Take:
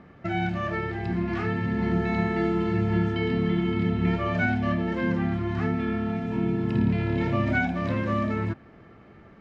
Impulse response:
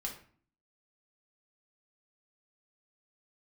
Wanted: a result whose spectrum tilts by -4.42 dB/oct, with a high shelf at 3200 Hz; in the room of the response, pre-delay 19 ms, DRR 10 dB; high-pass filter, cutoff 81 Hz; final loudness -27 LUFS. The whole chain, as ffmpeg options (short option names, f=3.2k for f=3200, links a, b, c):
-filter_complex "[0:a]highpass=81,highshelf=f=3.2k:g=7.5,asplit=2[a][b];[1:a]atrim=start_sample=2205,adelay=19[c];[b][c]afir=irnorm=-1:irlink=0,volume=-10dB[d];[a][d]amix=inputs=2:normalize=0,volume=-1.5dB"